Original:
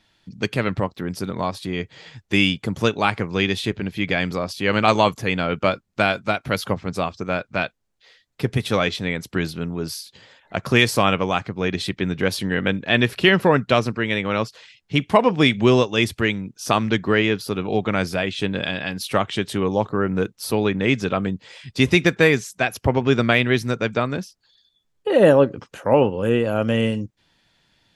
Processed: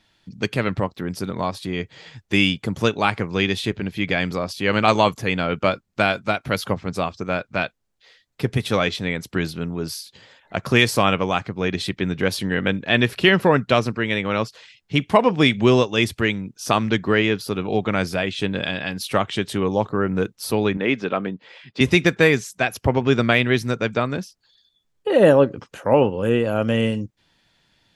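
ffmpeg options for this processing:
ffmpeg -i in.wav -filter_complex "[0:a]asettb=1/sr,asplit=3[link_01][link_02][link_03];[link_01]atrim=end=20.774[link_04];[link_02]atrim=start=20.77:end=21.81,asetpts=PTS-STARTPTS,afade=type=in:duration=0.004:curve=qsin,afade=type=out:start_time=1.036:duration=0.004:curve=qsin,highpass=220,lowpass=3300[link_05];[link_03]atrim=start=21.806[link_06];[link_04][link_05]acrossfade=duration=0.004:curve1=hsin:curve2=qsin[link_07];[link_07][link_06]acrossfade=duration=0.004:curve1=qsin:curve2=hsin" out.wav

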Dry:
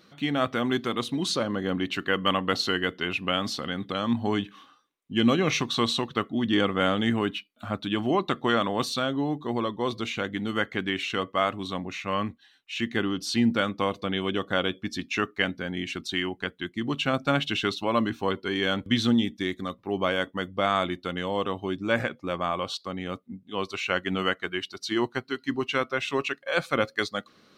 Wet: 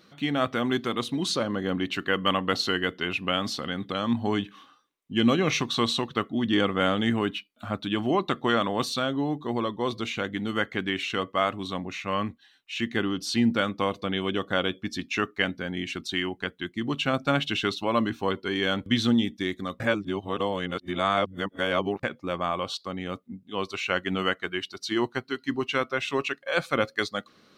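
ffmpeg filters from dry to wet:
ffmpeg -i in.wav -filter_complex "[0:a]asplit=3[link_01][link_02][link_03];[link_01]atrim=end=19.802[link_04];[link_02]atrim=start=19.798:end=22.032,asetpts=PTS-STARTPTS,areverse[link_05];[link_03]atrim=start=22.028[link_06];[link_04][link_05]acrossfade=duration=0.004:curve1=hsin:curve2=hsin[link_07];[link_07][link_06]acrossfade=duration=0.004:curve1=hsin:curve2=hsin" out.wav

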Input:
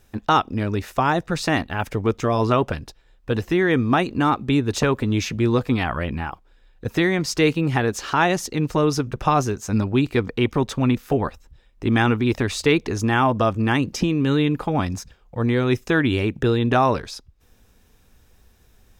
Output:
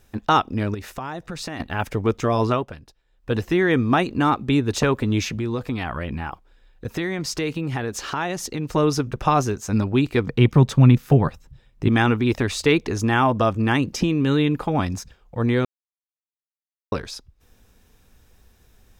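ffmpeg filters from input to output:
ffmpeg -i in.wav -filter_complex "[0:a]asettb=1/sr,asplit=3[link_01][link_02][link_03];[link_01]atrim=end=0.744[link_04];[link_02]atrim=start=0.74:end=1.6,asetpts=PTS-STARTPTS,afade=type=in:duration=0.004:curve=qsin,afade=type=out:start_time=0.856:duration=0.004:curve=qsin,acompressor=threshold=-28dB:ratio=5:attack=3.2:release=140:knee=1:detection=peak[link_05];[link_03]atrim=start=1.596[link_06];[link_04][link_05]acrossfade=duration=0.004:curve1=hsin:curve2=qsin[link_07];[link_07][link_06]acrossfade=duration=0.004:curve1=qsin:curve2=hsin,asettb=1/sr,asplit=3[link_08][link_09][link_10];[link_08]atrim=end=5.294[link_11];[link_09]atrim=start=5.29:end=8.72,asetpts=PTS-STARTPTS,afade=type=in:duration=0.004:curve=qsin,afade=type=out:start_time=3.426:duration=0.004:curve=qsin,acompressor=threshold=-24dB:ratio=2.5:attack=3.2:release=140:knee=1:detection=peak[link_12];[link_10]atrim=start=8.716[link_13];[link_11][link_12]acrossfade=duration=0.004:curve1=hsin:curve2=qsin[link_14];[link_14][link_13]acrossfade=duration=0.004:curve1=qsin:curve2=hsin,asettb=1/sr,asplit=3[link_15][link_16][link_17];[link_15]atrim=end=10.274[link_18];[link_16]atrim=start=10.27:end=11.88,asetpts=PTS-STARTPTS,afade=type=in:duration=0.004:curve=qsin,afade=type=out:start_time=1.606:duration=0.004:curve=qsin,equalizer=frequency=140:width_type=o:width=0.81:gain=12.5[link_19];[link_17]atrim=start=11.876[link_20];[link_18][link_19]acrossfade=duration=0.004:curve1=hsin:curve2=qsin[link_21];[link_21][link_20]acrossfade=duration=0.004:curve1=qsin:curve2=hsin,asplit=5[link_22][link_23][link_24][link_25][link_26];[link_22]atrim=end=2.66,asetpts=PTS-STARTPTS,afade=type=out:start_time=2.38:duration=0.28:curve=qsin:silence=0.281838[link_27];[link_23]atrim=start=2.66:end=3.11,asetpts=PTS-STARTPTS,volume=-11dB[link_28];[link_24]atrim=start=3.11:end=15.65,asetpts=PTS-STARTPTS,afade=type=in:duration=0.28:curve=qsin:silence=0.281838,afade=type=out:start_time=12.536:duration=0.004:curve=hsin[link_29];[link_25]atrim=start=15.65:end=16.92,asetpts=PTS-STARTPTS,volume=0[link_30];[link_26]atrim=start=16.92,asetpts=PTS-STARTPTS,afade=type=in:duration=0.004:curve=hsin[link_31];[link_27][link_28][link_29][link_30][link_31]concat=n=5:v=0:a=1" out.wav

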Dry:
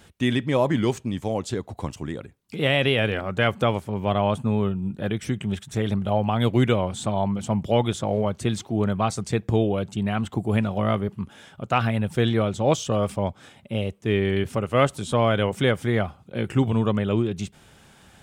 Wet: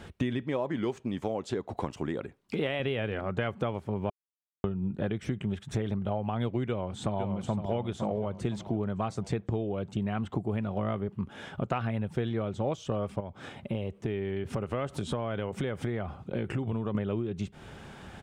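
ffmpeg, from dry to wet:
ffmpeg -i in.wav -filter_complex "[0:a]asettb=1/sr,asplit=3[link_01][link_02][link_03];[link_01]atrim=end=0.434[link_04];[link_02]atrim=start=0.43:end=2.8,asetpts=PTS-STARTPTS,afade=type=in:duration=0.004:curve=qsin,afade=type=out:start_time=2.366:duration=0.004:curve=qsin,equalizer=frequency=77:width=0.54:gain=-9.5[link_05];[link_03]atrim=start=2.796[link_06];[link_04][link_05]acrossfade=duration=0.004:curve1=hsin:curve2=qsin[link_07];[link_07][link_06]acrossfade=duration=0.004:curve1=qsin:curve2=hsin,asplit=2[link_08][link_09];[link_09]afade=type=in:start_time=6.67:duration=0.01,afade=type=out:start_time=7.67:duration=0.01,aecho=0:1:510|1020|1530|2040|2550:0.375837|0.169127|0.0761071|0.0342482|0.0154117[link_10];[link_08][link_10]amix=inputs=2:normalize=0,asettb=1/sr,asplit=3[link_11][link_12][link_13];[link_11]atrim=end=13.204[link_14];[link_12]atrim=start=13.2:end=16.95,asetpts=PTS-STARTPTS,afade=type=in:duration=0.004:curve=qsin,afade=type=out:start_time=3.746:duration=0.004:curve=qsin,acompressor=threshold=-35dB:ratio=2.5:attack=3.2:release=140:knee=1:detection=peak[link_15];[link_13]atrim=start=16.946[link_16];[link_14][link_15]acrossfade=duration=0.004:curve1=hsin:curve2=qsin[link_17];[link_17][link_16]acrossfade=duration=0.004:curve1=qsin:curve2=hsin,asplit=3[link_18][link_19][link_20];[link_18]atrim=end=4.1,asetpts=PTS-STARTPTS,afade=type=out:start_time=4.096:duration=0.004:curve=hsin[link_21];[link_19]atrim=start=4.1:end=4.64,asetpts=PTS-STARTPTS,volume=0[link_22];[link_20]atrim=start=4.64,asetpts=PTS-STARTPTS,afade=type=in:duration=0.004:curve=hsin[link_23];[link_21][link_22][link_23]concat=n=3:v=0:a=1,lowpass=frequency=2000:poles=1,equalizer=frequency=390:width_type=o:width=0.28:gain=2.5,acompressor=threshold=-35dB:ratio=8,volume=7dB" out.wav

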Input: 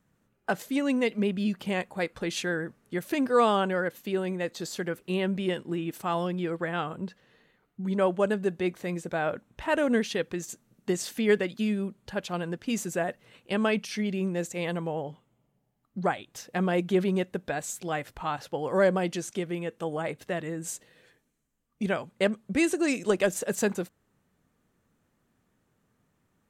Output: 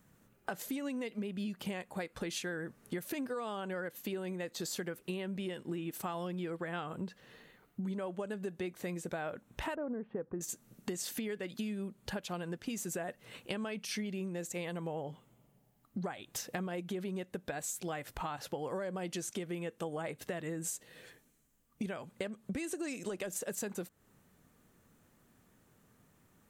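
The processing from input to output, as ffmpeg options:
ffmpeg -i in.wav -filter_complex "[0:a]asettb=1/sr,asplit=3[link_01][link_02][link_03];[link_01]atrim=end=9.754[link_04];[link_02]atrim=start=9.75:end=10.41,asetpts=PTS-STARTPTS,afade=type=in:duration=0.004:curve=qsin,afade=type=out:start_time=0.656:duration=0.004:curve=qsin,lowpass=frequency=1200:width=0.5412,lowpass=frequency=1200:width=1.3066[link_05];[link_03]atrim=start=10.406[link_06];[link_04][link_05]acrossfade=duration=0.004:curve1=hsin:curve2=qsin[link_07];[link_07][link_06]acrossfade=duration=0.004:curve1=qsin:curve2=hsin,highshelf=frequency=8500:gain=8.5,alimiter=limit=-20.5dB:level=0:latency=1:release=179,acompressor=threshold=-41dB:ratio=6,volume=4.5dB" out.wav

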